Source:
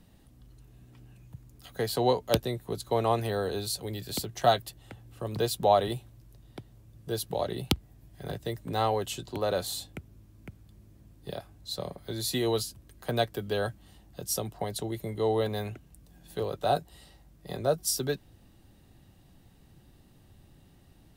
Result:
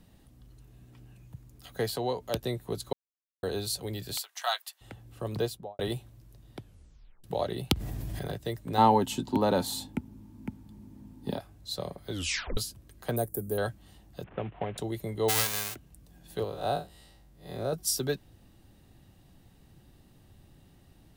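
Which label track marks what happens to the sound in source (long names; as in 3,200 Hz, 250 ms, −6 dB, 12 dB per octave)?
1.900000	2.430000	downward compressor 1.5 to 1, threshold −37 dBFS
2.930000	3.430000	silence
4.170000	4.810000	high-pass filter 940 Hz 24 dB per octave
5.310000	5.790000	fade out and dull
6.590000	6.590000	tape stop 0.65 s
7.740000	8.270000	envelope flattener amount 100%
8.780000	11.380000	hollow resonant body resonances 240/880 Hz, height 17 dB
12.120000	12.120000	tape stop 0.45 s
13.160000	13.580000	drawn EQ curve 390 Hz 0 dB, 1,600 Hz −13 dB, 3,400 Hz −24 dB, 9,800 Hz +14 dB
14.240000	14.780000	variable-slope delta modulation 16 kbit/s
15.280000	15.740000	spectral envelope flattened exponent 0.1
16.440000	17.730000	spectrum smeared in time width 111 ms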